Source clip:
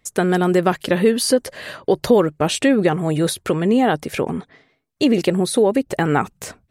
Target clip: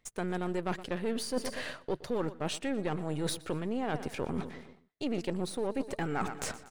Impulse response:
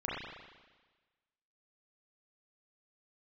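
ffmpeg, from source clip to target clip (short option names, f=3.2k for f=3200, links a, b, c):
-af "aeval=exprs='if(lt(val(0),0),0.447*val(0),val(0))':c=same,equalizer=f=13k:t=o:w=0.28:g=-14,aecho=1:1:120|240|360|480:0.112|0.0595|0.0315|0.0167,areverse,acompressor=threshold=-31dB:ratio=5,areverse"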